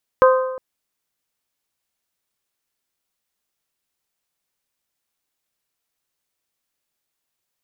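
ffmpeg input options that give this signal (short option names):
-f lavfi -i "aevalsrc='0.398*pow(10,-3*t/1)*sin(2*PI*518*t)+0.237*pow(10,-3*t/0.812)*sin(2*PI*1036*t)+0.141*pow(10,-3*t/0.769)*sin(2*PI*1243.2*t)+0.0841*pow(10,-3*t/0.719)*sin(2*PI*1554*t)':d=0.36:s=44100"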